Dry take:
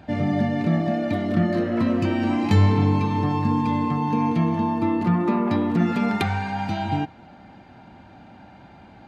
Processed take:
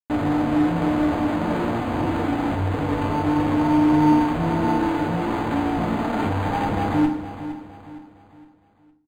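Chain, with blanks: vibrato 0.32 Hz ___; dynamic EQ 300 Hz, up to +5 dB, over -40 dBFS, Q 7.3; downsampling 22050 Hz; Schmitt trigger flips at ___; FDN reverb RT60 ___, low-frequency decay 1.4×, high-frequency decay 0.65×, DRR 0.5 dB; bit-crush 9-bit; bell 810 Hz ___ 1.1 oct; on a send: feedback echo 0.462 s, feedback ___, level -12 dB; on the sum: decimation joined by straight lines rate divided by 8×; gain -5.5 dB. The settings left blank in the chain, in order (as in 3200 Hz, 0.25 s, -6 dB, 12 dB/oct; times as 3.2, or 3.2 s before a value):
42 cents, -30.5 dBFS, 0.45 s, +4.5 dB, 39%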